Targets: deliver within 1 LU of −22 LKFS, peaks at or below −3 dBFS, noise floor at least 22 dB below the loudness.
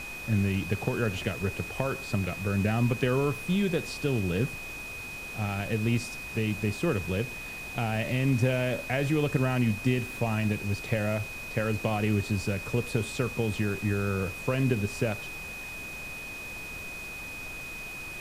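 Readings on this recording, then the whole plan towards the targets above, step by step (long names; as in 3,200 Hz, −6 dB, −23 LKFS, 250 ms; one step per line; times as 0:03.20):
interfering tone 2,500 Hz; level of the tone −38 dBFS; background noise floor −40 dBFS; target noise floor −52 dBFS; integrated loudness −30.0 LKFS; sample peak −12.0 dBFS; target loudness −22.0 LKFS
→ notch filter 2,500 Hz, Q 30
noise reduction from a noise print 12 dB
level +8 dB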